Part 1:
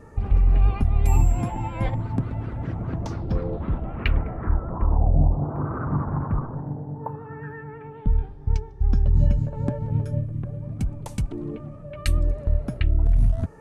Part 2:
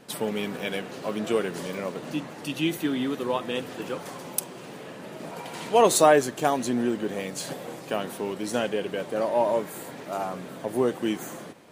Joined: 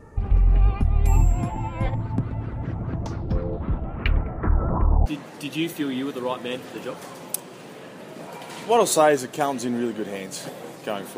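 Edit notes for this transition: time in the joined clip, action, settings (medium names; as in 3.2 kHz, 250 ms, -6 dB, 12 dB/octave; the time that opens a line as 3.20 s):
part 1
4.43–5.06 s: level flattener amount 50%
5.06 s: go over to part 2 from 2.10 s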